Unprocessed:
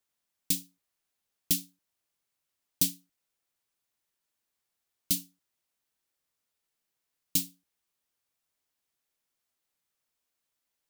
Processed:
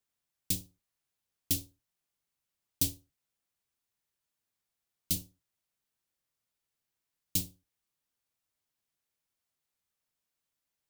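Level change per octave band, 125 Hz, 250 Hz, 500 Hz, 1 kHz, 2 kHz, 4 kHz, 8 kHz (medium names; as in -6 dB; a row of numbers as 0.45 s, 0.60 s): +2.5 dB, -3.0 dB, +2.5 dB, no reading, -3.5 dB, -3.5 dB, -3.5 dB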